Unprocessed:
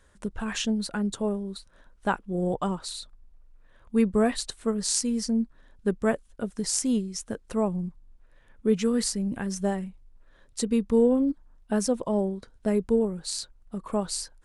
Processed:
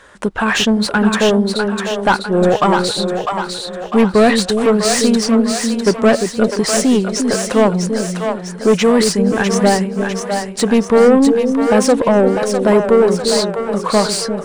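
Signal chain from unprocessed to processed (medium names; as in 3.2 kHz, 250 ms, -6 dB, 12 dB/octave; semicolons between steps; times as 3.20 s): overdrive pedal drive 25 dB, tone 2.3 kHz, clips at -6.5 dBFS; two-band feedback delay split 500 Hz, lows 349 ms, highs 651 ms, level -5 dB; trim +5 dB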